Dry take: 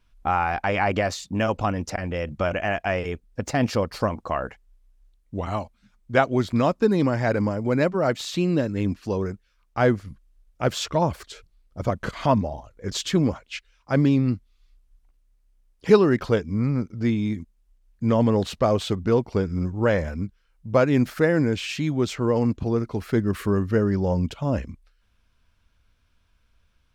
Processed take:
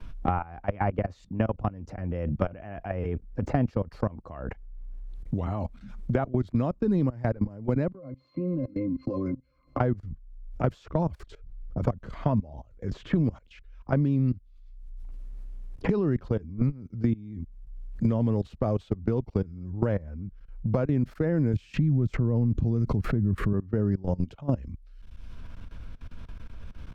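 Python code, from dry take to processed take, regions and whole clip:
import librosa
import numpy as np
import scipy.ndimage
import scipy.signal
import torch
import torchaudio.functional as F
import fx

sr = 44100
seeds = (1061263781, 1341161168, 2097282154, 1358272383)

y = fx.chain(x, sr, fx.highpass(hz=250.0, slope=12),
    fx.octave_resonator(note='C', decay_s=0.14),
    fx.band_squash(depth_pct=100), at=(7.92, 9.8))
y = fx.chain(y, sr, fx.bass_treble(bass_db=12, treble_db=6),
    fx.pre_swell(db_per_s=91.0), at=(21.53, 23.53))
y = fx.level_steps(y, sr, step_db=22)
y = fx.tilt_eq(y, sr, slope=-3.5)
y = fx.band_squash(y, sr, depth_pct=100)
y = F.gain(torch.from_numpy(y), -8.5).numpy()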